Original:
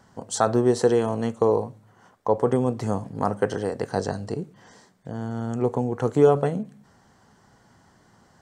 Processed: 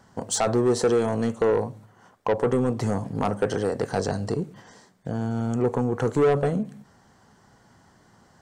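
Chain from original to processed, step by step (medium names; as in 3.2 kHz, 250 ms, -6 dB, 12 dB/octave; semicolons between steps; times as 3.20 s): gate -49 dBFS, range -6 dB; in parallel at -1 dB: compression, threshold -31 dBFS, peak gain reduction 18.5 dB; on the sum: saturation -16 dBFS, distortion -10 dB; trim +1 dB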